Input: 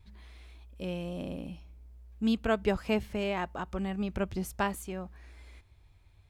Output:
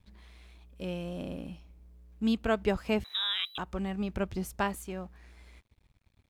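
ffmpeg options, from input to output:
-filter_complex "[0:a]asettb=1/sr,asplit=3[s0][s1][s2];[s0]atrim=end=3.044[s3];[s1]atrim=start=3.04:end=3.58,asetpts=PTS-STARTPTS,afade=t=in:d=0.004:c=qsin,afade=t=out:st=0.536:d=0.004:c=qsin,lowpass=f=3400:t=q:w=0.5098,lowpass=f=3400:t=q:w=0.6013,lowpass=f=3400:t=q:w=0.9,lowpass=f=3400:t=q:w=2.563,afreqshift=-4000[s4];[s2]atrim=start=3.576[s5];[s3][s4]acrossfade=d=0.004:c1=hsin:c2=qsin[s6];[s6][s5]acrossfade=d=0.004:c1=qsin:c2=hsin,aeval=exprs='sgn(val(0))*max(abs(val(0))-0.001,0)':c=same"

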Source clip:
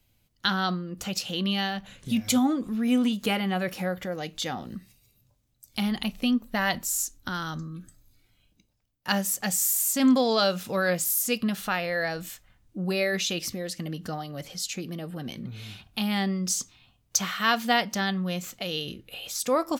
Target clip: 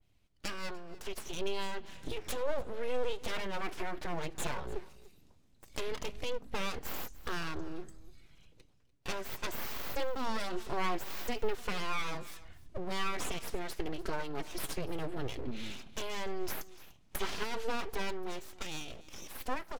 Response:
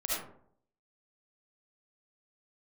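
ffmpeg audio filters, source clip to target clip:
-filter_complex "[0:a]lowpass=9500,bass=f=250:g=2,treble=f=4000:g=-5,dynaudnorm=f=510:g=7:m=3.76,alimiter=limit=0.282:level=0:latency=1:release=29,acompressor=threshold=0.00891:ratio=1.5,flanger=delay=2.7:depth=5.1:regen=21:speed=0.16:shape=triangular,aeval=exprs='abs(val(0))':c=same,asplit=2[s0][s1];[s1]aecho=0:1:294:0.1[s2];[s0][s2]amix=inputs=2:normalize=0,adynamicequalizer=threshold=0.00501:dfrequency=2000:dqfactor=0.7:tfrequency=2000:tqfactor=0.7:attack=5:release=100:ratio=0.375:range=2.5:mode=cutabove:tftype=highshelf"

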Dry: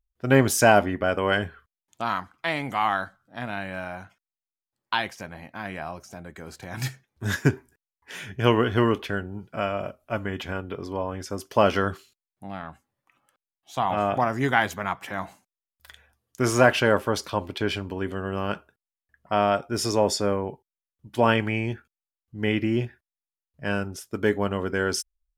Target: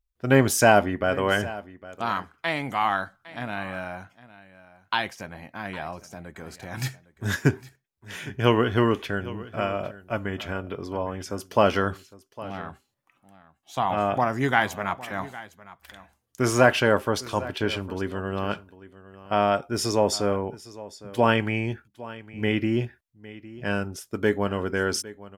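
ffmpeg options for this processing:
-af "aecho=1:1:808:0.126"

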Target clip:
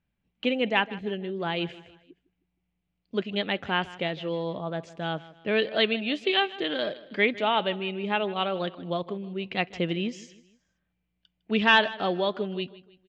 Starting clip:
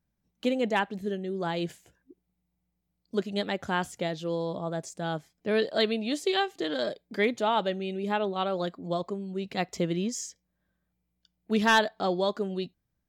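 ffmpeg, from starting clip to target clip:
-af "lowpass=f=2800:t=q:w=3,aecho=1:1:156|312|468:0.119|0.0499|0.021"

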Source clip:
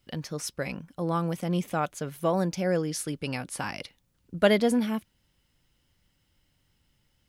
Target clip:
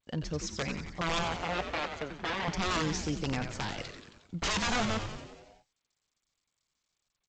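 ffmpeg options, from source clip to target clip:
-filter_complex "[0:a]aeval=exprs='(mod(14.1*val(0)+1,2)-1)/14.1':c=same,asettb=1/sr,asplit=3[s0][s1][s2];[s0]atrim=end=1.234[s3];[s1]atrim=start=1.23:end=2.48,asetpts=PTS-STARTPTS,afade=t=in:d=0.004:c=qsin,afade=t=out:st=1.246:d=0.004:c=qsin,highpass=250,lowpass=3200[s4];[s2]atrim=start=2.476[s5];[s3][s4]acrossfade=d=0.004:c1=hsin:c2=qsin[s6];[s6][s5]acrossfade=d=0.004:c1=qsin:c2=hsin,asplit=9[s7][s8][s9][s10][s11][s12][s13][s14][s15];[s8]adelay=90,afreqshift=-120,volume=0.398[s16];[s9]adelay=180,afreqshift=-240,volume=0.245[s17];[s10]adelay=270,afreqshift=-360,volume=0.153[s18];[s11]adelay=360,afreqshift=-480,volume=0.0944[s19];[s12]adelay=450,afreqshift=-600,volume=0.0589[s20];[s13]adelay=540,afreqshift=-720,volume=0.0363[s21];[s14]adelay=630,afreqshift=-840,volume=0.0226[s22];[s15]adelay=720,afreqshift=-960,volume=0.014[s23];[s7][s16][s17][s18][s19][s20][s21][s22][s23]amix=inputs=9:normalize=0,aphaser=in_gain=1:out_gain=1:delay=1.7:decay=0.22:speed=0.29:type=triangular,agate=range=0.02:threshold=0.00141:ratio=16:detection=peak,volume=0.794" -ar 16000 -c:a g722

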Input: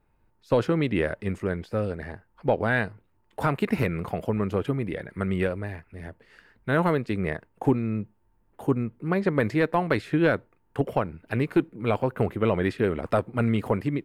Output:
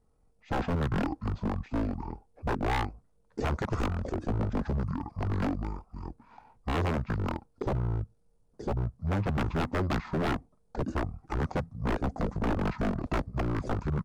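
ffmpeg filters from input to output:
-af "asetrate=22696,aresample=44100,atempo=1.94306,aeval=exprs='0.0708*(abs(mod(val(0)/0.0708+3,4)-2)-1)':c=same"

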